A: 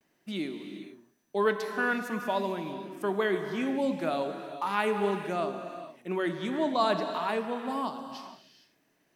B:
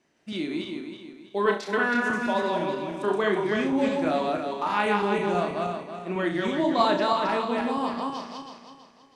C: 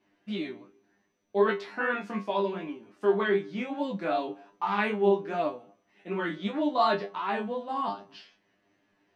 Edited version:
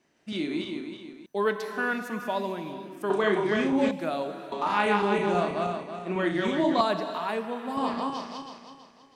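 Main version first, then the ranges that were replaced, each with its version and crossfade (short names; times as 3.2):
B
1.26–3.1 from A
3.91–4.52 from A
6.81–7.77 from A
not used: C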